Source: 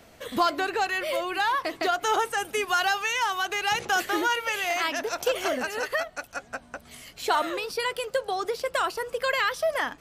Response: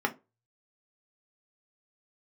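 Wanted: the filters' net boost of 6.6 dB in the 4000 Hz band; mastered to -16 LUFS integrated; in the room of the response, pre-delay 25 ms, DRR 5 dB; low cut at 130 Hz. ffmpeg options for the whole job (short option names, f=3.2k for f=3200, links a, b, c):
-filter_complex "[0:a]highpass=130,equalizer=f=4k:t=o:g=9,asplit=2[a][b];[1:a]atrim=start_sample=2205,adelay=25[c];[b][c]afir=irnorm=-1:irlink=0,volume=-14.5dB[d];[a][d]amix=inputs=2:normalize=0,volume=7.5dB"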